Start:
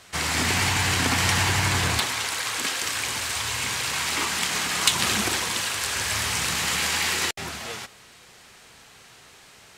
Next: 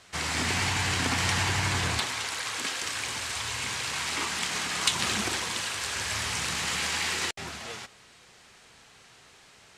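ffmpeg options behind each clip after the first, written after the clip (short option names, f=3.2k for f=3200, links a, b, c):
-af "lowpass=9.6k,volume=-4.5dB"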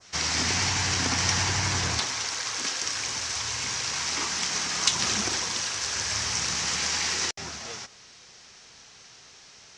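-af "lowpass=f=5.8k:t=q:w=4,adynamicequalizer=threshold=0.01:dfrequency=3500:dqfactor=0.84:tfrequency=3500:tqfactor=0.84:attack=5:release=100:ratio=0.375:range=2:mode=cutabove:tftype=bell"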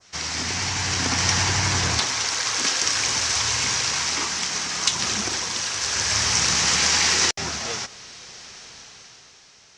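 -af "dynaudnorm=f=110:g=17:m=11dB,volume=-1.5dB"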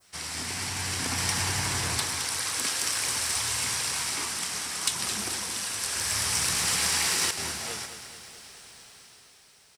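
-af "aexciter=amount=15.5:drive=8.3:freq=9.5k,aecho=1:1:215|430|645|860|1075|1290:0.316|0.177|0.0992|0.0555|0.0311|0.0174,volume=-7.5dB"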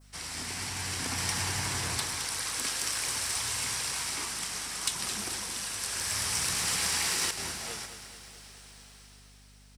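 -af "aeval=exprs='val(0)+0.00251*(sin(2*PI*50*n/s)+sin(2*PI*2*50*n/s)/2+sin(2*PI*3*50*n/s)/3+sin(2*PI*4*50*n/s)/4+sin(2*PI*5*50*n/s)/5)':c=same,volume=-3.5dB"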